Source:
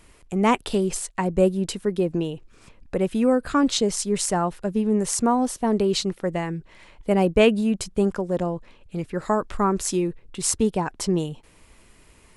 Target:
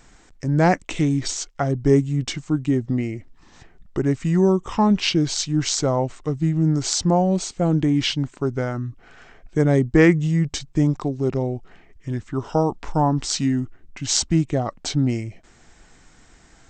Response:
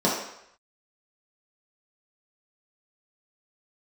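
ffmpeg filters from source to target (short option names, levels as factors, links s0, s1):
-af "asetrate=32667,aresample=44100,volume=1.26"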